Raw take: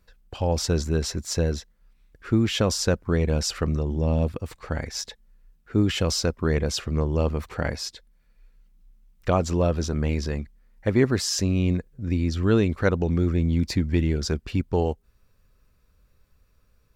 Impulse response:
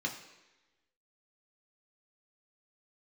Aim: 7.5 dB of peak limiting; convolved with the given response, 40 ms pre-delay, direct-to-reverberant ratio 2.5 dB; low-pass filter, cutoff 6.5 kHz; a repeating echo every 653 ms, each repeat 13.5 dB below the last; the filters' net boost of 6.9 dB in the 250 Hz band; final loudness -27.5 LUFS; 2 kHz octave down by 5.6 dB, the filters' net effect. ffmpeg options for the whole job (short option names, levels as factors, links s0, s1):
-filter_complex "[0:a]lowpass=6500,equalizer=f=250:t=o:g=9,equalizer=f=2000:t=o:g=-8,alimiter=limit=0.251:level=0:latency=1,aecho=1:1:653|1306:0.211|0.0444,asplit=2[s0][s1];[1:a]atrim=start_sample=2205,adelay=40[s2];[s1][s2]afir=irnorm=-1:irlink=0,volume=0.473[s3];[s0][s3]amix=inputs=2:normalize=0,volume=0.473"